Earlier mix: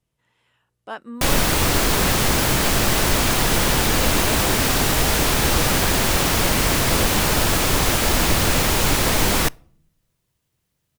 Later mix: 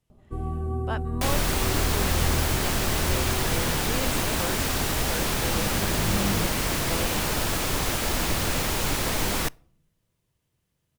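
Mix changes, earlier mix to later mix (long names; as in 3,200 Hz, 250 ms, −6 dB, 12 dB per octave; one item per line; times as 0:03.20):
first sound: unmuted
second sound −7.5 dB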